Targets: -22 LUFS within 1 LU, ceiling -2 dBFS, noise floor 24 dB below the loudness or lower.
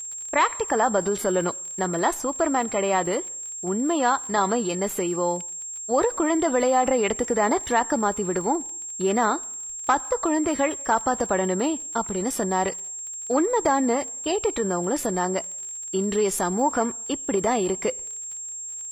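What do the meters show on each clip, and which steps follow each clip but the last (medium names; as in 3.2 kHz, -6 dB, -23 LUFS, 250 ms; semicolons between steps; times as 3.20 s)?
tick rate 29 per s; steady tone 7.5 kHz; tone level -32 dBFS; loudness -24.5 LUFS; peak level -8.0 dBFS; loudness target -22.0 LUFS
-> de-click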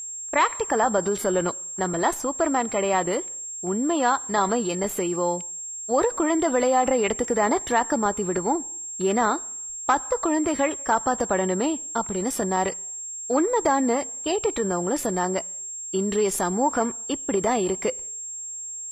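tick rate 0.11 per s; steady tone 7.5 kHz; tone level -32 dBFS
-> band-stop 7.5 kHz, Q 30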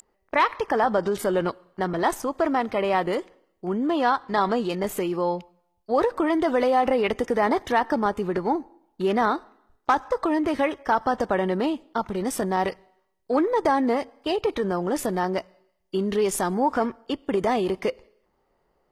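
steady tone not found; loudness -25.0 LUFS; peak level -9.0 dBFS; loudness target -22.0 LUFS
-> trim +3 dB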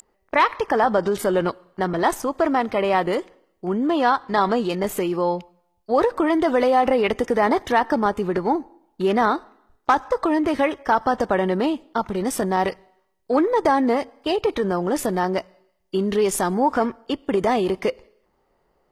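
loudness -22.0 LUFS; peak level -6.0 dBFS; noise floor -68 dBFS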